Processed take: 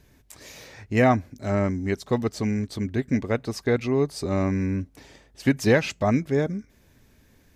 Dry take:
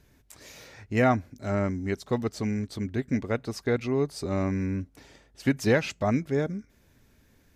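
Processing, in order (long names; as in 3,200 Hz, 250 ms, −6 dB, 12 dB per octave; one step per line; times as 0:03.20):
notch filter 1,400 Hz, Q 20
level +3.5 dB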